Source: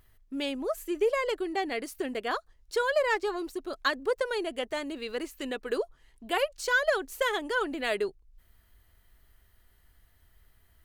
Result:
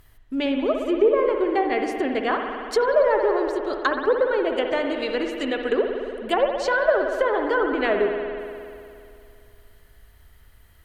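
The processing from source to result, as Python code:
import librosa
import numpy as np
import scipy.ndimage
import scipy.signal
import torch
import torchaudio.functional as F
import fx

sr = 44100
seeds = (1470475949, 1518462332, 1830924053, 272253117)

y = fx.env_lowpass_down(x, sr, base_hz=990.0, full_db=-24.5)
y = fx.rev_spring(y, sr, rt60_s=2.5, pass_ms=(58,), chirp_ms=35, drr_db=3.0)
y = F.gain(torch.from_numpy(y), 8.0).numpy()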